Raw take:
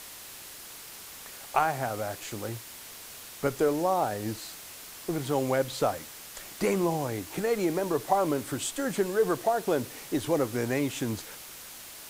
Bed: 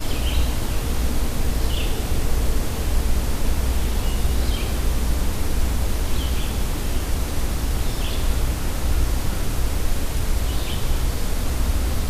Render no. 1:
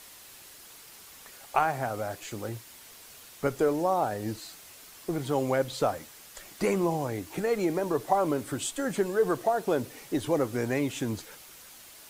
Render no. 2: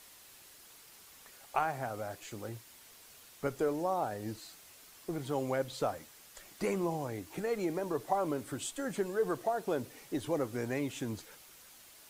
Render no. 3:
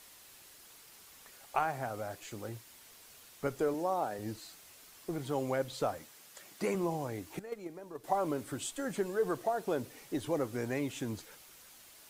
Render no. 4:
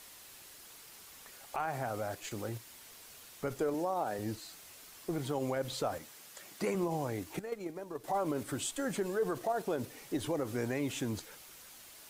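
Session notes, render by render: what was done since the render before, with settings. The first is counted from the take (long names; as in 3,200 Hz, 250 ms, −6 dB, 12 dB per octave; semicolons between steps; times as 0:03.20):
broadband denoise 6 dB, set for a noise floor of −45 dBFS
level −6.5 dB
0:03.74–0:04.19: high-pass filter 170 Hz; 0:06.06–0:06.75: high-pass filter 110 Hz; 0:07.39–0:08.04: noise gate −30 dBFS, range −12 dB
in parallel at −1 dB: output level in coarse steps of 16 dB; on the sum: brickwall limiter −24 dBFS, peak gain reduction 11 dB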